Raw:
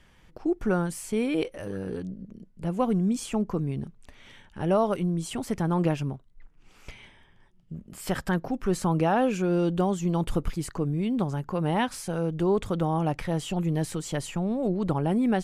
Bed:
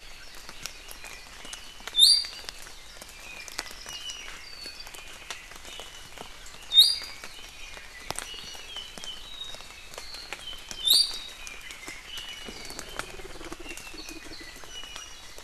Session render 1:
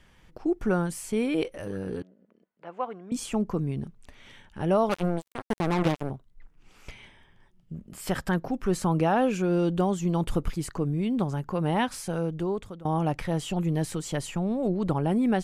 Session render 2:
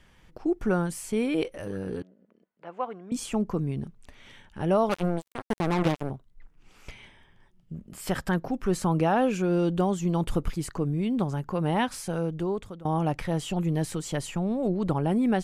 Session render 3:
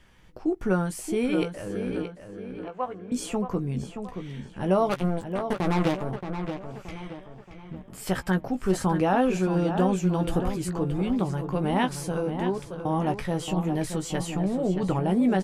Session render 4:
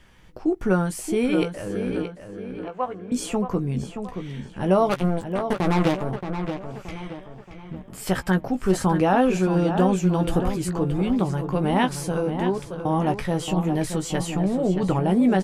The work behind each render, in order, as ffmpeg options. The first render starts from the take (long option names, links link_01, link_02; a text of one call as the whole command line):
ffmpeg -i in.wav -filter_complex "[0:a]asettb=1/sr,asplit=3[link_01][link_02][link_03];[link_01]atrim=end=2.024[link_04];[link_02]atrim=start=2.02:end=3.12,asetpts=PTS-STARTPTS,afade=type=in:duration=0.004:curve=qsin,afade=type=out:start_time=1.096:duration=0.004:curve=qsin,highpass=700,lowpass=2100[link_05];[link_03]atrim=start=3.116[link_06];[link_04][link_05]acrossfade=duration=0.004:curve1=hsin:curve2=qsin[link_07];[link_07][link_06]acrossfade=duration=0.004:curve1=qsin:curve2=hsin,asettb=1/sr,asplit=3[link_08][link_09][link_10];[link_08]atrim=end=4.894[link_11];[link_09]atrim=start=4.89:end=6.1,asetpts=PTS-STARTPTS,afade=type=in:duration=0.004:curve=qsin,afade=type=out:start_time=1.206:duration=0.004:curve=qsin,acrusher=bits=3:mix=0:aa=0.5[link_12];[link_10]atrim=start=6.096[link_13];[link_11][link_12]acrossfade=duration=0.004:curve1=hsin:curve2=qsin[link_14];[link_14][link_13]acrossfade=duration=0.004:curve1=qsin:curve2=hsin,asplit=2[link_15][link_16];[link_15]atrim=end=12.85,asetpts=PTS-STARTPTS,afade=type=out:start_time=12.16:duration=0.69:silence=0.0749894[link_17];[link_16]atrim=start=12.85,asetpts=PTS-STARTPTS,afade=type=in:duration=0.004:curve=hsin:silence=0.0749894[link_18];[link_17][link_18]concat=n=2:v=0:a=1" out.wav
ffmpeg -i in.wav -af anull out.wav
ffmpeg -i in.wav -filter_complex "[0:a]asplit=2[link_01][link_02];[link_02]adelay=16,volume=-8dB[link_03];[link_01][link_03]amix=inputs=2:normalize=0,asplit=2[link_04][link_05];[link_05]adelay=625,lowpass=frequency=3700:poles=1,volume=-8dB,asplit=2[link_06][link_07];[link_07]adelay=625,lowpass=frequency=3700:poles=1,volume=0.45,asplit=2[link_08][link_09];[link_09]adelay=625,lowpass=frequency=3700:poles=1,volume=0.45,asplit=2[link_10][link_11];[link_11]adelay=625,lowpass=frequency=3700:poles=1,volume=0.45,asplit=2[link_12][link_13];[link_13]adelay=625,lowpass=frequency=3700:poles=1,volume=0.45[link_14];[link_04][link_06][link_08][link_10][link_12][link_14]amix=inputs=6:normalize=0" out.wav
ffmpeg -i in.wav -af "volume=3.5dB" out.wav